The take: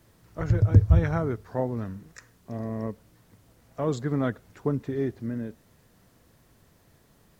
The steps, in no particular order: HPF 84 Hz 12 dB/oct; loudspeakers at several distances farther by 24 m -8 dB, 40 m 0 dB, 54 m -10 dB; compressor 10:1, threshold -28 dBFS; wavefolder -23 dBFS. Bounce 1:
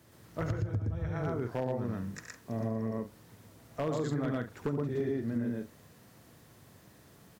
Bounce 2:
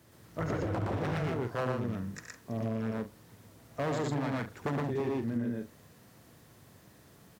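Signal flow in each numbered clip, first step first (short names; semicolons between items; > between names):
loudspeakers at several distances > compressor > HPF > wavefolder; wavefolder > loudspeakers at several distances > compressor > HPF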